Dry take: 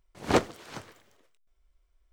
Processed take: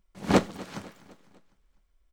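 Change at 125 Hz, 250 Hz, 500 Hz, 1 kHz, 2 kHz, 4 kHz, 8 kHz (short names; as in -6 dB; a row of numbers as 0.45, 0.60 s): +4.5, +5.0, +0.5, 0.0, 0.0, 0.0, 0.0 dB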